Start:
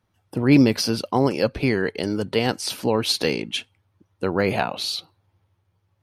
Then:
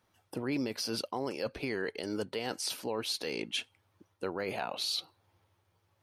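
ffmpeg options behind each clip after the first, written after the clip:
ffmpeg -i in.wav -af "bass=frequency=250:gain=-9,treble=frequency=4000:gain=2,areverse,acompressor=threshold=-28dB:ratio=6,areverse,alimiter=level_in=1dB:limit=-24dB:level=0:latency=1:release=290,volume=-1dB,volume=1.5dB" out.wav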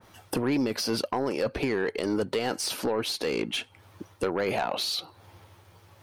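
ffmpeg -i in.wav -af "acompressor=threshold=-43dB:ratio=3,aeval=exprs='0.0501*sin(PI/2*2.51*val(0)/0.0501)':channel_layout=same,adynamicequalizer=threshold=0.00398:dfrequency=2100:dqfactor=0.7:tfrequency=2100:tqfactor=0.7:attack=5:release=100:ratio=0.375:range=3:mode=cutabove:tftype=highshelf,volume=6.5dB" out.wav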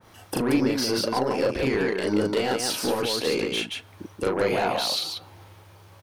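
ffmpeg -i in.wav -af "aecho=1:1:37.9|180.8:1|0.708" out.wav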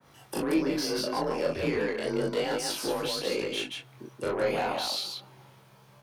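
ffmpeg -i in.wav -af "afreqshift=32,flanger=delay=20:depth=4.5:speed=0.35,volume=-2dB" out.wav

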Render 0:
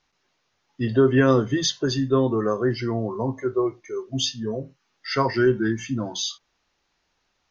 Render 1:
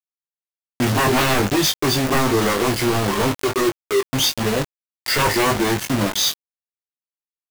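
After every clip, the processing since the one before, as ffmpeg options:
ffmpeg -i in.wav -filter_complex "[0:a]aeval=exprs='0.1*(abs(mod(val(0)/0.1+3,4)-2)-1)':channel_layout=same,acrusher=bits=4:mix=0:aa=0.000001,asplit=2[link_01][link_02];[link_02]adelay=20,volume=-5.5dB[link_03];[link_01][link_03]amix=inputs=2:normalize=0,volume=7.5dB" out.wav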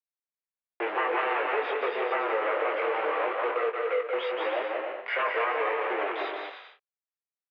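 ffmpeg -i in.wav -af "highpass=frequency=330:width_type=q:width=0.5412,highpass=frequency=330:width_type=q:width=1.307,lowpass=frequency=2500:width_type=q:width=0.5176,lowpass=frequency=2500:width_type=q:width=0.7071,lowpass=frequency=2500:width_type=q:width=1.932,afreqshift=100,aecho=1:1:180|297|373|422.5|454.6:0.631|0.398|0.251|0.158|0.1,acompressor=threshold=-20dB:ratio=3,volume=-5dB" out.wav

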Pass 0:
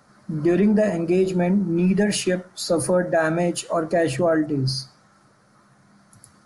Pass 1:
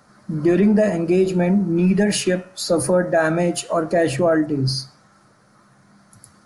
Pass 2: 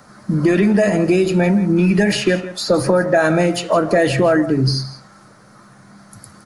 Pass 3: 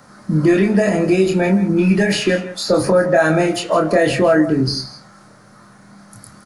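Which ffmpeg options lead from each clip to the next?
ffmpeg -i in.wav -af "bandreject=frequency=140.3:width_type=h:width=4,bandreject=frequency=280.6:width_type=h:width=4,bandreject=frequency=420.9:width_type=h:width=4,bandreject=frequency=561.2:width_type=h:width=4,bandreject=frequency=701.5:width_type=h:width=4,bandreject=frequency=841.8:width_type=h:width=4,bandreject=frequency=982.1:width_type=h:width=4,bandreject=frequency=1122.4:width_type=h:width=4,bandreject=frequency=1262.7:width_type=h:width=4,bandreject=frequency=1403:width_type=h:width=4,bandreject=frequency=1543.3:width_type=h:width=4,bandreject=frequency=1683.6:width_type=h:width=4,bandreject=frequency=1823.9:width_type=h:width=4,bandreject=frequency=1964.2:width_type=h:width=4,bandreject=frequency=2104.5:width_type=h:width=4,bandreject=frequency=2244.8:width_type=h:width=4,bandreject=frequency=2385.1:width_type=h:width=4,bandreject=frequency=2525.4:width_type=h:width=4,bandreject=frequency=2665.7:width_type=h:width=4,bandreject=frequency=2806:width_type=h:width=4,bandreject=frequency=2946.3:width_type=h:width=4,bandreject=frequency=3086.6:width_type=h:width=4,volume=2.5dB" out.wav
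ffmpeg -i in.wav -filter_complex "[0:a]acrossover=split=1100|2400|5600[link_01][link_02][link_03][link_04];[link_01]acompressor=threshold=-21dB:ratio=4[link_05];[link_02]acompressor=threshold=-31dB:ratio=4[link_06];[link_03]acompressor=threshold=-33dB:ratio=4[link_07];[link_04]acompressor=threshold=-46dB:ratio=4[link_08];[link_05][link_06][link_07][link_08]amix=inputs=4:normalize=0,aecho=1:1:165:0.178,volume=8dB" out.wav
ffmpeg -i in.wav -filter_complex "[0:a]asplit=2[link_01][link_02];[link_02]adelay=26,volume=-4.5dB[link_03];[link_01][link_03]amix=inputs=2:normalize=0,volume=-1dB" out.wav

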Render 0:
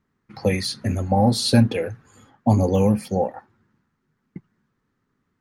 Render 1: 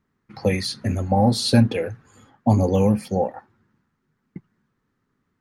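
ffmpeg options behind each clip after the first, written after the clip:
ffmpeg -i in.wav -af "highshelf=frequency=9600:gain=-4" out.wav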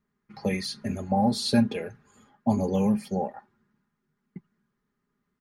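ffmpeg -i in.wav -af "aecho=1:1:4.9:0.58,volume=-7dB" out.wav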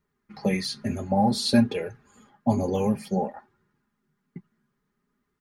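ffmpeg -i in.wav -af "flanger=delay=2.1:depth=5.9:regen=-44:speed=0.55:shape=sinusoidal,volume=6dB" out.wav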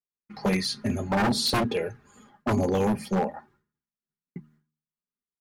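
ffmpeg -i in.wav -af "aeval=exprs='0.106*(abs(mod(val(0)/0.106+3,4)-2)-1)':channel_layout=same,agate=range=-33dB:threshold=-58dB:ratio=3:detection=peak,bandreject=frequency=76.61:width_type=h:width=4,bandreject=frequency=153.22:width_type=h:width=4,bandreject=frequency=229.83:width_type=h:width=4,bandreject=frequency=306.44:width_type=h:width=4,volume=2dB" out.wav

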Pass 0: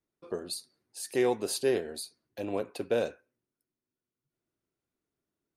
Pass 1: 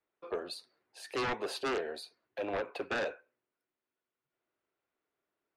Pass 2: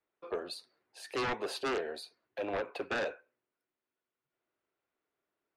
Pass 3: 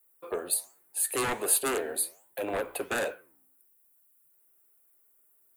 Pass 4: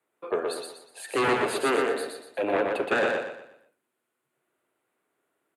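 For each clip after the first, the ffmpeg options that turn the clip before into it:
ffmpeg -i in.wav -filter_complex "[0:a]acrossover=split=440 3300:gain=0.141 1 0.0794[link_01][link_02][link_03];[link_01][link_02][link_03]amix=inputs=3:normalize=0,aeval=exprs='0.0944*sin(PI/2*3.55*val(0)/0.0944)':channel_layout=same,volume=-8.5dB" out.wav
ffmpeg -i in.wav -af anull out.wav
ffmpeg -i in.wav -af "flanger=delay=7.4:depth=9.4:regen=-89:speed=1.3:shape=sinusoidal,aexciter=amount=9.6:drive=9.8:freq=8100,volume=8dB" out.wav
ffmpeg -i in.wav -af "highpass=120,lowpass=3300,aecho=1:1:121|242|363|484|605:0.668|0.241|0.0866|0.0312|0.0112,volume=5.5dB" out.wav

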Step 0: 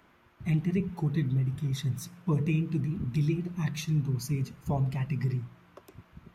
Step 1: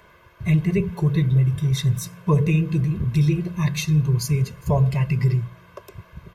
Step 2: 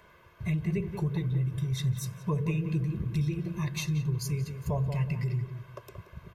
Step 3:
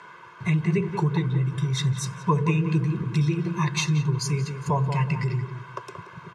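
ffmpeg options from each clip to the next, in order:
ffmpeg -i in.wav -af "aecho=1:1:1.9:0.79,volume=8dB" out.wav
ffmpeg -i in.wav -filter_complex "[0:a]acompressor=threshold=-25dB:ratio=2,asplit=2[link_01][link_02];[link_02]adelay=179,lowpass=frequency=1700:poles=1,volume=-7.5dB,asplit=2[link_03][link_04];[link_04]adelay=179,lowpass=frequency=1700:poles=1,volume=0.3,asplit=2[link_05][link_06];[link_06]adelay=179,lowpass=frequency=1700:poles=1,volume=0.3,asplit=2[link_07][link_08];[link_08]adelay=179,lowpass=frequency=1700:poles=1,volume=0.3[link_09];[link_01][link_03][link_05][link_07][link_09]amix=inputs=5:normalize=0,volume=-5.5dB" out.wav
ffmpeg -i in.wav -af "highpass=frequency=140:width=0.5412,highpass=frequency=140:width=1.3066,equalizer=frequency=220:width_type=q:width=4:gain=-6,equalizer=frequency=610:width_type=q:width=4:gain=-9,equalizer=frequency=950:width_type=q:width=4:gain=8,equalizer=frequency=1400:width_type=q:width=4:gain=7,lowpass=frequency=8800:width=0.5412,lowpass=frequency=8800:width=1.3066,volume=9dB" out.wav

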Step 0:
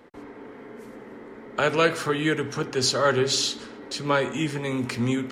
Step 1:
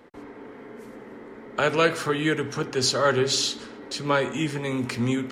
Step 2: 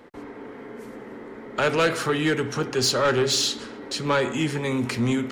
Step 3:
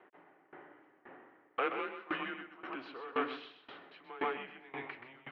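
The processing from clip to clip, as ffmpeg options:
ffmpeg -i in.wav -af anull out.wav
ffmpeg -i in.wav -af "asoftclip=type=tanh:threshold=-17.5dB,volume=3dB" out.wav
ffmpeg -i in.wav -filter_complex "[0:a]asplit=2[link_01][link_02];[link_02]aecho=0:1:128|256|384|512:0.668|0.207|0.0642|0.0199[link_03];[link_01][link_03]amix=inputs=2:normalize=0,highpass=frequency=520:width_type=q:width=0.5412,highpass=frequency=520:width_type=q:width=1.307,lowpass=frequency=3000:width_type=q:width=0.5176,lowpass=frequency=3000:width_type=q:width=0.7071,lowpass=frequency=3000:width_type=q:width=1.932,afreqshift=-120,aeval=exprs='val(0)*pow(10,-21*if(lt(mod(1.9*n/s,1),2*abs(1.9)/1000),1-mod(1.9*n/s,1)/(2*abs(1.9)/1000),(mod(1.9*n/s,1)-2*abs(1.9)/1000)/(1-2*abs(1.9)/1000))/20)':channel_layout=same,volume=-7dB" out.wav

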